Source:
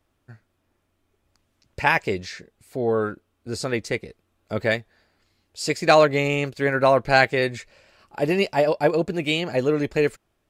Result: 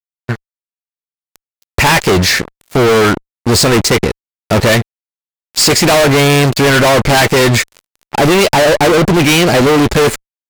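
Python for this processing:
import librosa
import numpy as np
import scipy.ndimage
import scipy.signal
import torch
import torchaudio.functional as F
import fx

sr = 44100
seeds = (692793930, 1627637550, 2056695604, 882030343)

y = fx.fuzz(x, sr, gain_db=39.0, gate_db=-46.0)
y = y * 10.0 ** (5.5 / 20.0)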